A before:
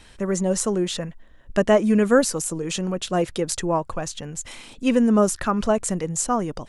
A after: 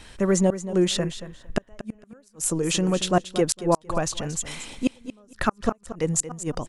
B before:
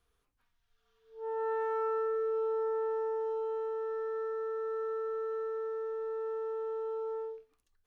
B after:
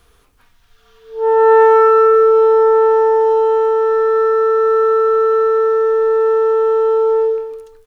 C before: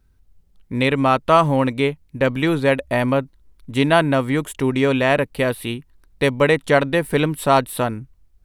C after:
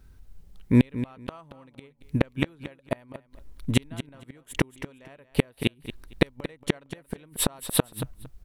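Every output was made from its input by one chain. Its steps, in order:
inverted gate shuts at -12 dBFS, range -40 dB; feedback delay 229 ms, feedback 17%, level -12.5 dB; peak normalisation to -3 dBFS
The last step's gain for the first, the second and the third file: +3.0 dB, +23.0 dB, +7.0 dB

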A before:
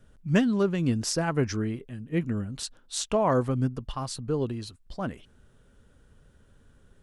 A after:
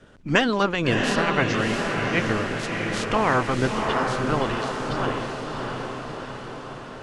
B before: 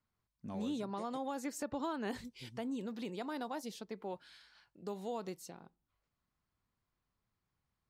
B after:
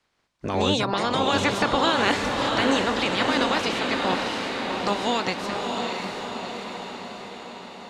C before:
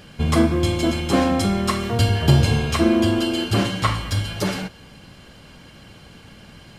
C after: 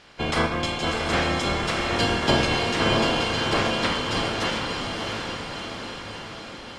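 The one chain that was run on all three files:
spectral peaks clipped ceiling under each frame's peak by 22 dB; distance through air 92 m; on a send: echo that smears into a reverb 676 ms, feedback 62%, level -3 dB; on the sum: normalise loudness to -24 LUFS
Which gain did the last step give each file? +3.5 dB, +17.0 dB, -5.5 dB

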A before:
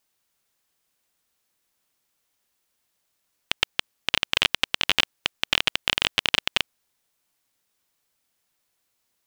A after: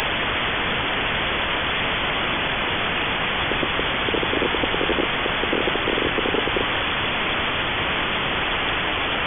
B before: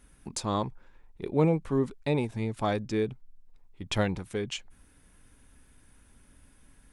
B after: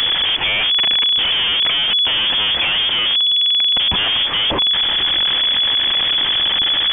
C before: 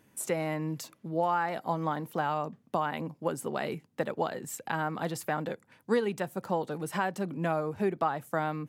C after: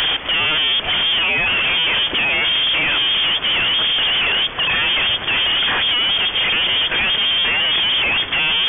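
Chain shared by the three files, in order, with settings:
one-bit comparator; frequency inversion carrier 3.4 kHz; peak normalisation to -9 dBFS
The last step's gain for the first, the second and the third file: +16.5 dB, +15.5 dB, +15.5 dB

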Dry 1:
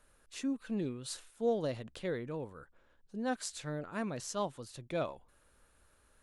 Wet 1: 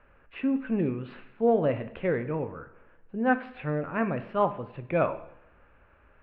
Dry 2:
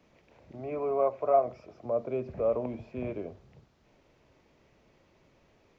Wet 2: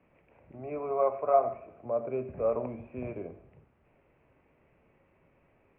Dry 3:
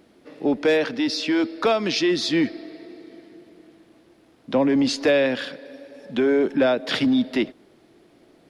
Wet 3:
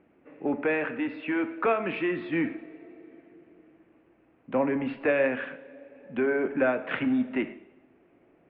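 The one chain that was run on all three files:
elliptic low-pass 2.6 kHz, stop band 60 dB; two-slope reverb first 0.76 s, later 2.7 s, from -28 dB, DRR 9 dB; dynamic bell 1.4 kHz, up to +5 dB, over -39 dBFS, Q 1; peak normalisation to -12 dBFS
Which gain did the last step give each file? +9.5 dB, -2.0 dB, -6.5 dB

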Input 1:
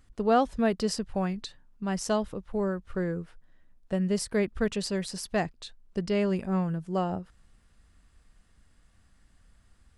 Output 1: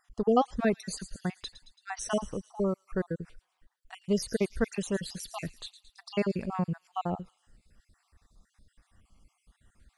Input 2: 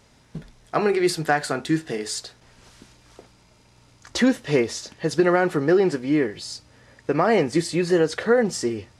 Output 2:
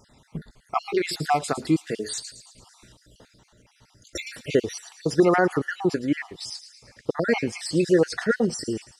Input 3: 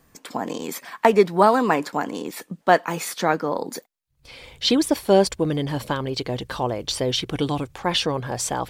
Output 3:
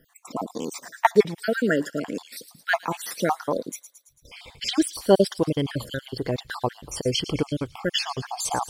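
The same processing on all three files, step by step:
random holes in the spectrogram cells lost 53%; feedback echo behind a high-pass 111 ms, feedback 56%, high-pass 4.2 kHz, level -10 dB; trim +1 dB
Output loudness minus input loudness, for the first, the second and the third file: -2.5 LU, -3.0 LU, -3.5 LU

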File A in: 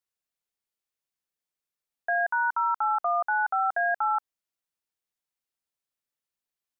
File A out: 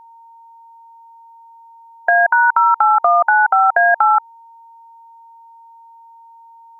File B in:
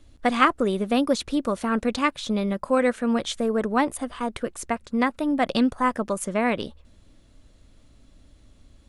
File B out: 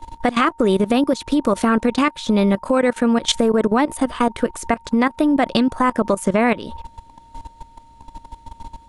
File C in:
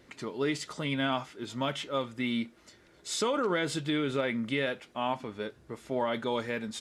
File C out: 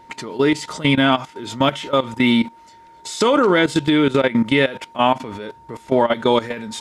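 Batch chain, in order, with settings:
dynamic bell 320 Hz, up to +3 dB, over -39 dBFS, Q 3.3; compression 8:1, threshold -26 dBFS; whistle 920 Hz -49 dBFS; level held to a coarse grid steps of 16 dB; peak normalisation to -2 dBFS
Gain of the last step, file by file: +20.0 dB, +17.0 dB, +18.0 dB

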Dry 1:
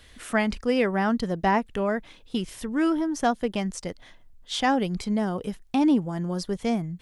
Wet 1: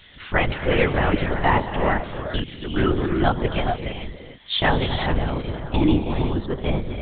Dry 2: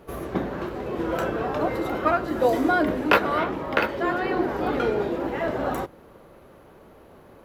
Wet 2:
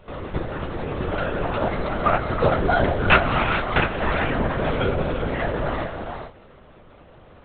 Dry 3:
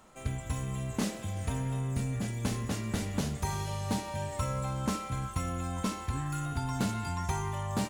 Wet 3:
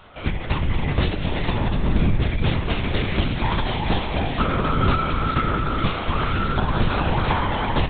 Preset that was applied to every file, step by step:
high-pass 46 Hz; treble shelf 2.4 kHz +9 dB; gated-style reverb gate 470 ms rising, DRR 4.5 dB; LPC vocoder at 8 kHz whisper; normalise loudness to -23 LUFS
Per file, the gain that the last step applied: +2.0 dB, 0.0 dB, +10.5 dB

